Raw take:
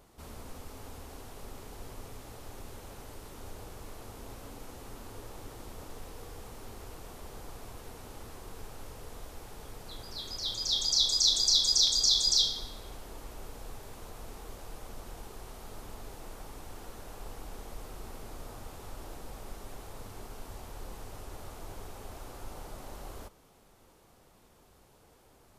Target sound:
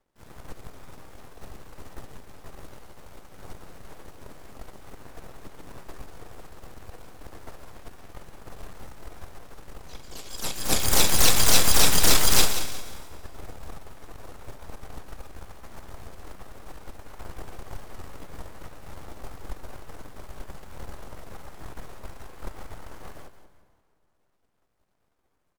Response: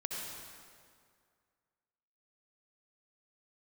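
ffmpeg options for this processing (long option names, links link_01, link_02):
-filter_complex "[0:a]highshelf=frequency=2700:gain=-5,bandreject=frequency=60:width_type=h:width=6,bandreject=frequency=120:width_type=h:width=6,bandreject=frequency=180:width_type=h:width=6,bandreject=frequency=240:width_type=h:width=6,bandreject=frequency=300:width_type=h:width=6,bandreject=frequency=360:width_type=h:width=6,bandreject=frequency=420:width_type=h:width=6,aeval=exprs='0.211*(cos(1*acos(clip(val(0)/0.211,-1,1)))-cos(1*PI/2))+0.0133*(cos(5*acos(clip(val(0)/0.211,-1,1)))-cos(5*PI/2))+0.0376*(cos(7*acos(clip(val(0)/0.211,-1,1)))-cos(7*PI/2))+0.0668*(cos(8*acos(clip(val(0)/0.211,-1,1)))-cos(8*PI/2))':channel_layout=same,aecho=1:1:178|356|534:0.266|0.0851|0.0272,asplit=2[link_01][link_02];[1:a]atrim=start_sample=2205,adelay=71[link_03];[link_02][link_03]afir=irnorm=-1:irlink=0,volume=-16dB[link_04];[link_01][link_04]amix=inputs=2:normalize=0,asplit=3[link_05][link_06][link_07];[link_06]asetrate=29433,aresample=44100,atempo=1.49831,volume=-5dB[link_08];[link_07]asetrate=66075,aresample=44100,atempo=0.66742,volume=-1dB[link_09];[link_05][link_08][link_09]amix=inputs=3:normalize=0,volume=3dB"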